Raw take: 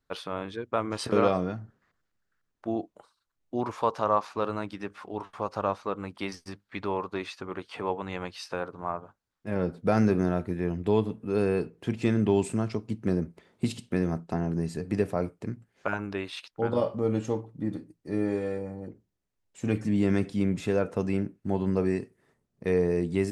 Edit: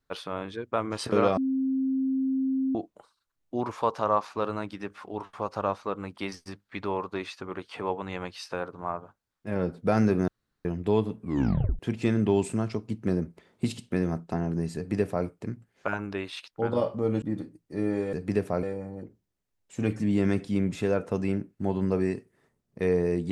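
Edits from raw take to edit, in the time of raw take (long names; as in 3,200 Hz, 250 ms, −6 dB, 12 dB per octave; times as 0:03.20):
0:01.37–0:02.75: beep over 265 Hz −23.5 dBFS
0:10.28–0:10.65: fill with room tone
0:11.20: tape stop 0.59 s
0:14.76–0:15.26: duplicate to 0:18.48
0:17.22–0:17.57: remove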